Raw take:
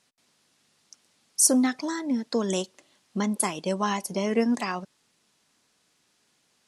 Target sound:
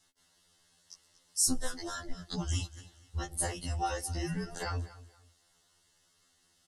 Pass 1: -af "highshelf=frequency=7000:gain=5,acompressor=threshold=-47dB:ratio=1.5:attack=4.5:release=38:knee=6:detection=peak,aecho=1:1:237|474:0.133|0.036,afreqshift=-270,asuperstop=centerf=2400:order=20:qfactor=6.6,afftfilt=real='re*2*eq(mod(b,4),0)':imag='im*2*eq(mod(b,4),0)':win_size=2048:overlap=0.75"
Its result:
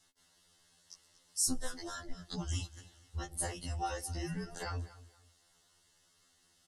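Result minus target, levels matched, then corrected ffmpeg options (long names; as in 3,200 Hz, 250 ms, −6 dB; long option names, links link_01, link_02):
downward compressor: peak gain reduction +4 dB
-af "highshelf=frequency=7000:gain=5,acompressor=threshold=-35.5dB:ratio=1.5:attack=4.5:release=38:knee=6:detection=peak,aecho=1:1:237|474:0.133|0.036,afreqshift=-270,asuperstop=centerf=2400:order=20:qfactor=6.6,afftfilt=real='re*2*eq(mod(b,4),0)':imag='im*2*eq(mod(b,4),0)':win_size=2048:overlap=0.75"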